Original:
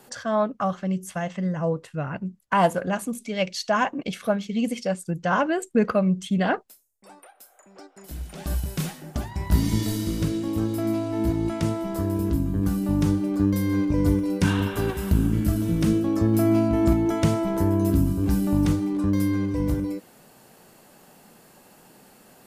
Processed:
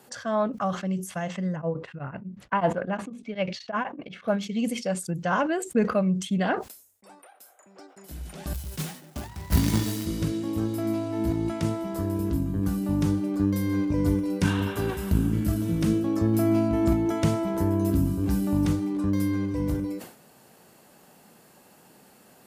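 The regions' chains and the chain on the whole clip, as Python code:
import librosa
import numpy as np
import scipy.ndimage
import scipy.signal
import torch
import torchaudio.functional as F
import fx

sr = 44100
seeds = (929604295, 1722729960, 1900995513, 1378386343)

y = fx.chain(x, sr, fx.lowpass(hz=2600.0, slope=12),
    fx.tremolo_abs(hz=8.1), at=(1.56, 4.28))
y = fx.chain(y, sr, fx.hum_notches(base_hz=60, count=3),
    fx.quant_companded(bits=4),
    fx.band_widen(depth_pct=70), at=(8.53, 10.06))
y = scipy.signal.sosfilt(scipy.signal.butter(2, 50.0, 'highpass', fs=sr, output='sos'), y)
y = fx.sustainer(y, sr, db_per_s=110.0)
y = y * librosa.db_to_amplitude(-2.5)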